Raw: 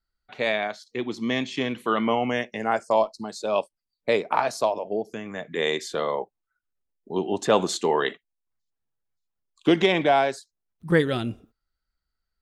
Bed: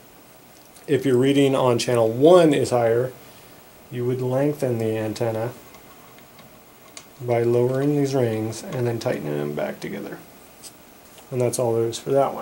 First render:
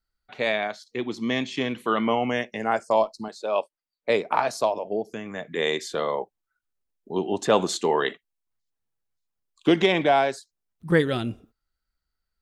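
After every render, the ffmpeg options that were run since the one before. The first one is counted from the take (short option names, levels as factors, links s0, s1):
-filter_complex "[0:a]asettb=1/sr,asplit=3[s0][s1][s2];[s0]atrim=end=3.284[s3];[s1]atrim=start=3.28:end=4.1,asetpts=PTS-STARTPTS,afade=t=in:d=0.004:c=qsin,afade=t=out:st=0.816:d=0.004:c=qsin,bass=f=250:g=-13,treble=f=4000:g=-9[s4];[s2]atrim=start=4.096[s5];[s3][s4]acrossfade=d=0.004:c1=hsin:c2=qsin[s6];[s6][s5]acrossfade=d=0.004:c1=qsin:c2=hsin"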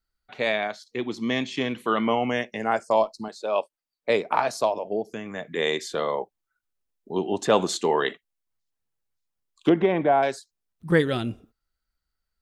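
-filter_complex "[0:a]asettb=1/sr,asplit=3[s0][s1][s2];[s0]atrim=end=9.694[s3];[s1]atrim=start=9.69:end=10.23,asetpts=PTS-STARTPTS,afade=t=in:d=0.004:c=qsin,afade=t=out:st=0.536:d=0.004:c=qsin,lowpass=1400[s4];[s2]atrim=start=10.226[s5];[s3][s4]acrossfade=d=0.004:c1=hsin:c2=qsin[s6];[s6][s5]acrossfade=d=0.004:c1=qsin:c2=hsin"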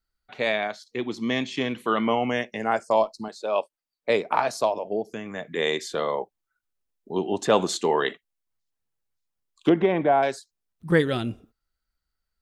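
-af anull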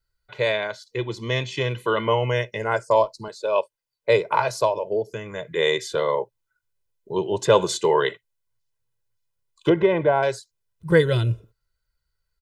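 -af "equalizer=f=120:w=2.8:g=11,aecho=1:1:2:0.8"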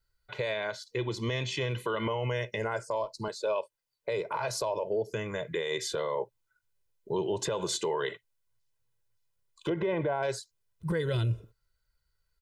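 -af "acompressor=threshold=0.0794:ratio=4,alimiter=limit=0.0794:level=0:latency=1:release=44"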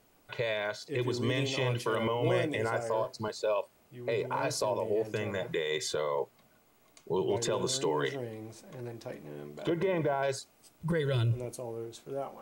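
-filter_complex "[1:a]volume=0.126[s0];[0:a][s0]amix=inputs=2:normalize=0"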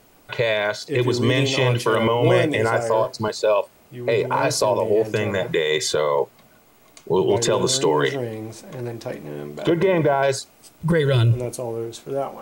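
-af "volume=3.76"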